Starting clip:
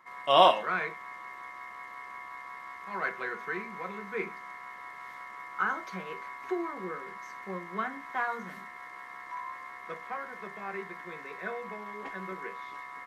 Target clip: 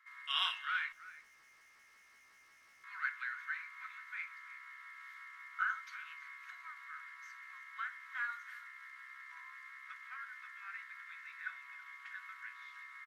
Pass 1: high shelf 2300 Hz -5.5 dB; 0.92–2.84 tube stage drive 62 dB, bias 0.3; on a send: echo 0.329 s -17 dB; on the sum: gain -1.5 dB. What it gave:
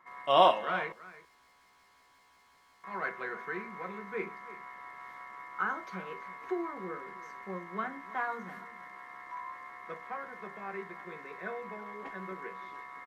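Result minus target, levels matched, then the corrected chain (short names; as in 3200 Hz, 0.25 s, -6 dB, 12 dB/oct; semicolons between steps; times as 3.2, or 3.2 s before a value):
1000 Hz band +6.0 dB
elliptic high-pass 1400 Hz, stop band 70 dB; high shelf 2300 Hz -5.5 dB; 0.92–2.84 tube stage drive 62 dB, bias 0.3; on a send: echo 0.329 s -17 dB; on the sum: gain -1.5 dB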